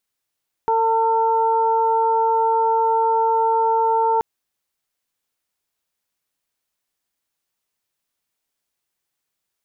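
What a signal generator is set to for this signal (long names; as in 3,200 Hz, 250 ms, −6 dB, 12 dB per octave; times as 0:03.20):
steady harmonic partials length 3.53 s, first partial 451 Hz, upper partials 5/−13 dB, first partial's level −21 dB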